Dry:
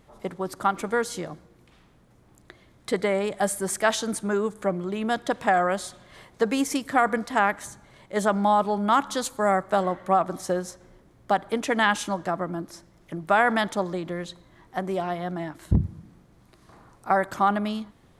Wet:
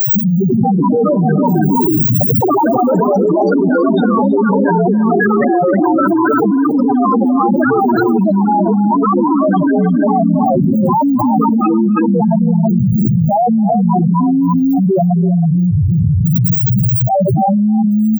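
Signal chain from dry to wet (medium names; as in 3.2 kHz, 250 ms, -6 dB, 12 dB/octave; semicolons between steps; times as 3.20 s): high-pass 110 Hz 24 dB/octave; RIAA curve playback; slow attack 108 ms; added noise violet -36 dBFS; loudest bins only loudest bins 64; in parallel at -4 dB: word length cut 6-bit, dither none; on the sum: loudest bins only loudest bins 1; ever faster or slower copies 321 ms, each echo +4 st, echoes 3; multi-tap echo 268/324 ms -18/-9.5 dB; level flattener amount 100%; trim +3.5 dB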